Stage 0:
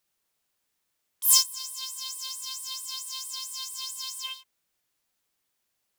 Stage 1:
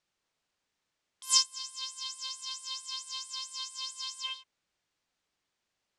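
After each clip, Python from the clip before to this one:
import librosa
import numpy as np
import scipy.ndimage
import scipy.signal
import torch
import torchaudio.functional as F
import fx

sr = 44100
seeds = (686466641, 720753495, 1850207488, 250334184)

y = scipy.signal.sosfilt(scipy.signal.bessel(8, 5400.0, 'lowpass', norm='mag', fs=sr, output='sos'), x)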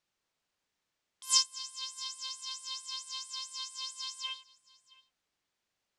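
y = x + 10.0 ** (-23.0 / 20.0) * np.pad(x, (int(671 * sr / 1000.0), 0))[:len(x)]
y = y * 10.0 ** (-1.5 / 20.0)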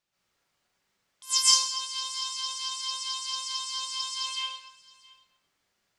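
y = fx.rev_plate(x, sr, seeds[0], rt60_s=0.85, hf_ratio=0.7, predelay_ms=110, drr_db=-8.5)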